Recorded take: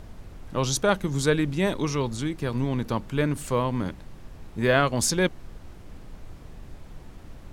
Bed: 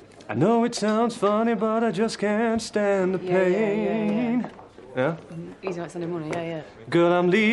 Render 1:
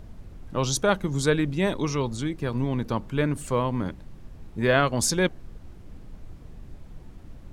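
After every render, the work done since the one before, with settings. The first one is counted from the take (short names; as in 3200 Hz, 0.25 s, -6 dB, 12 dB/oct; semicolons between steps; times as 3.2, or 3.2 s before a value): denoiser 6 dB, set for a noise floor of -45 dBFS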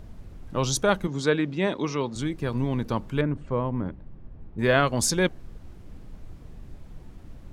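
1.07–2.16 BPF 170–5000 Hz; 3.21–4.59 tape spacing loss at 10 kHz 40 dB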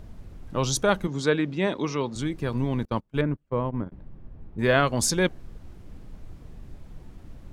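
2.85–3.92 gate -29 dBFS, range -31 dB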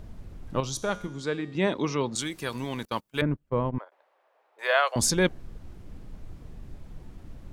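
0.6–1.55 resonator 110 Hz, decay 0.94 s; 2.15–3.22 tilt +3.5 dB/oct; 3.78–4.96 steep high-pass 560 Hz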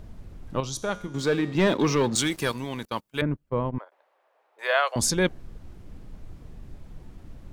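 1.14–2.52 sample leveller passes 2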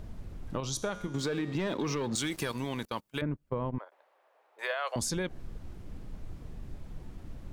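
limiter -19.5 dBFS, peak gain reduction 11 dB; compressor, threshold -29 dBFS, peak gain reduction 6.5 dB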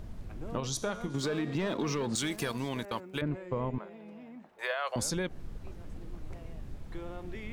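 add bed -24.5 dB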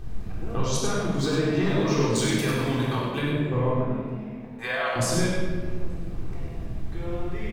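echo 99 ms -5.5 dB; shoebox room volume 1500 m³, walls mixed, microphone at 3.7 m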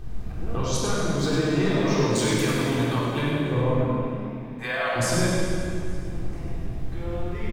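feedback echo 0.434 s, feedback 43%, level -19.5 dB; plate-style reverb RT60 1.8 s, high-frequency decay 0.85×, pre-delay 90 ms, DRR 4 dB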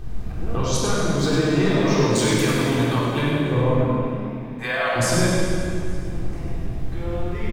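gain +3.5 dB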